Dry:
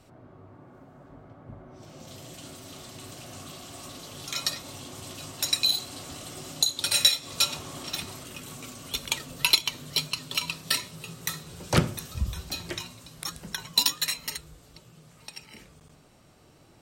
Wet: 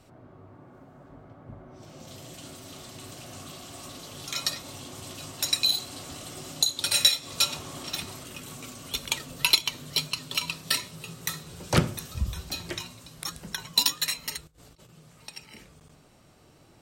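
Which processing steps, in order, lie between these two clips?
14.47–14.89 negative-ratio compressor -55 dBFS, ratio -0.5

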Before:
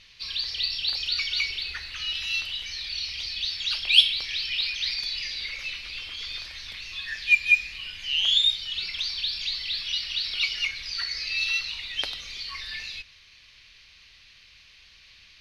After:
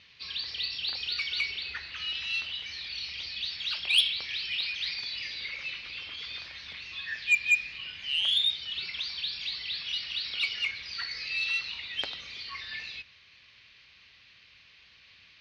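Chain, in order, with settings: HPF 97 Hz 12 dB/oct; air absorption 170 m; soft clip -15 dBFS, distortion -15 dB

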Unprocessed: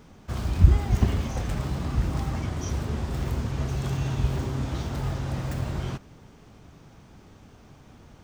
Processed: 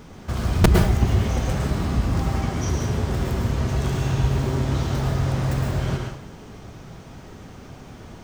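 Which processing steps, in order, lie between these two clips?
in parallel at +3 dB: compressor 12:1, threshold -33 dBFS, peak gain reduction 25 dB; on the sum: wrapped overs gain 6.5 dB; plate-style reverb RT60 0.64 s, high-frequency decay 0.9×, pre-delay 95 ms, DRR 1 dB

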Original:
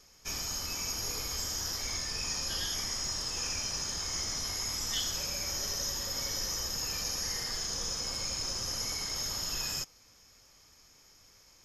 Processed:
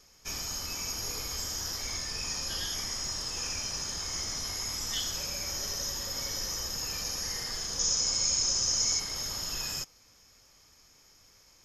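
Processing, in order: 7.79–9 synth low-pass 6600 Hz, resonance Q 3.3

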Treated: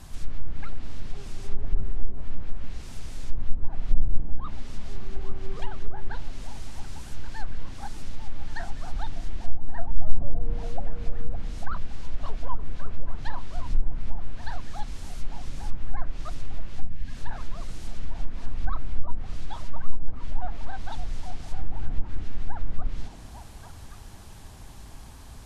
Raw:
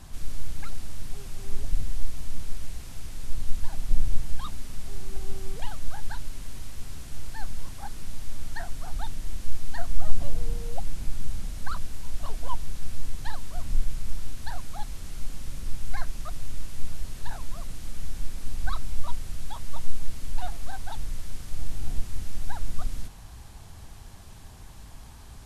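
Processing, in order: delay with a stepping band-pass 0.282 s, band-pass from 290 Hz, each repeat 0.7 oct, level -2 dB; treble ducked by the level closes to 760 Hz, closed at -12 dBFS; spectral gain 16.81–17.16, 300–1600 Hz -10 dB; gain +1 dB

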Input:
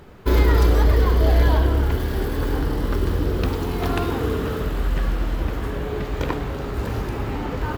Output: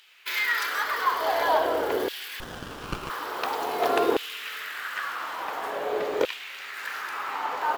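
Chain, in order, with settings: LFO high-pass saw down 0.48 Hz 430–3000 Hz; 2.4–3.1 running maximum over 17 samples

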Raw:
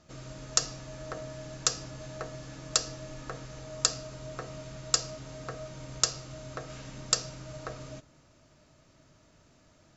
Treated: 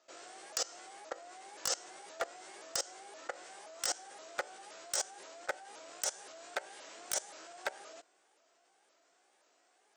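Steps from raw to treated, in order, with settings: repeated pitch sweeps +5 st, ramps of 0.523 s; HPF 420 Hz 24 dB/oct; level quantiser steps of 20 dB; wavefolder -31.5 dBFS; gain +8.5 dB

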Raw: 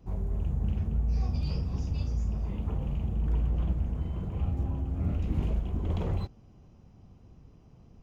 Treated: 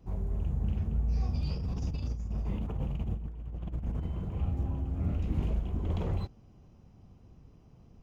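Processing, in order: 1.55–4.06 negative-ratio compressor -31 dBFS, ratio -0.5; gain -1.5 dB

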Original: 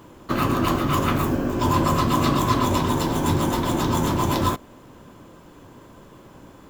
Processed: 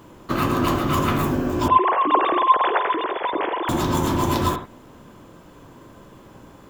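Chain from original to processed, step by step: 1.68–3.69 sine-wave speech; on a send: reverb RT60 0.00 s, pre-delay 47 ms, DRR 7.5 dB

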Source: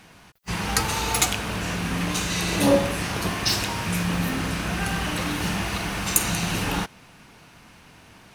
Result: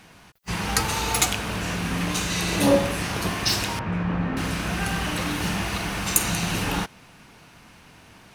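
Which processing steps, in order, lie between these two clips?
3.79–4.37 LPF 1600 Hz 12 dB/oct

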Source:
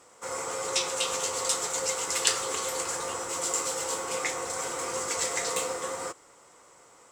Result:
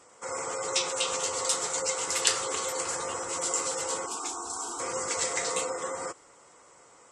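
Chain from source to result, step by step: 4.06–4.8 fixed phaser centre 530 Hz, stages 6; spectral gate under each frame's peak -25 dB strong

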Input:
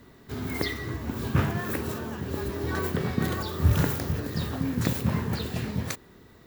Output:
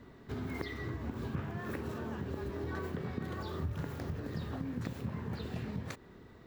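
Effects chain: LPF 2400 Hz 6 dB/oct; compressor 5:1, threshold -34 dBFS, peak gain reduction 16.5 dB; gain -1.5 dB

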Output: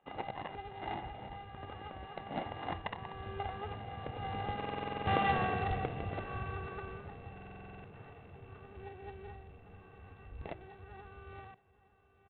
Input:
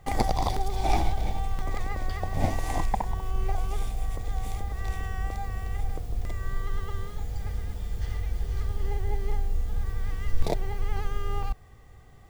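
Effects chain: sample sorter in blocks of 16 samples; Doppler pass-by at 5.28, 9 m/s, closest 2.5 m; LPF 1100 Hz 12 dB/oct; de-hum 325.2 Hz, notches 9; spectral gate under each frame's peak -10 dB weak; tilt shelf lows -5.5 dB, about 690 Hz; in parallel at -9 dB: wrapped overs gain 40.5 dB; on the sum: echo 0.872 s -18.5 dB; stuck buffer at 4.56/7.33, samples 2048, times 10; gain +13.5 dB; IMA ADPCM 32 kbps 8000 Hz

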